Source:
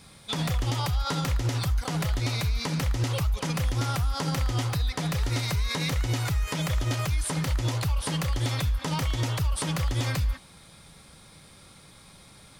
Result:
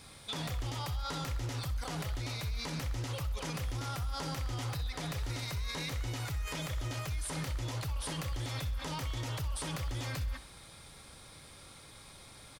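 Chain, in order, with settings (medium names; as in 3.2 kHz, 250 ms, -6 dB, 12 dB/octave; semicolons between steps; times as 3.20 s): peaking EQ 180 Hz -8.5 dB 0.52 oct; peak limiter -28.5 dBFS, peak gain reduction 10.5 dB; feedback delay 64 ms, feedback 53%, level -15 dB; trim -1 dB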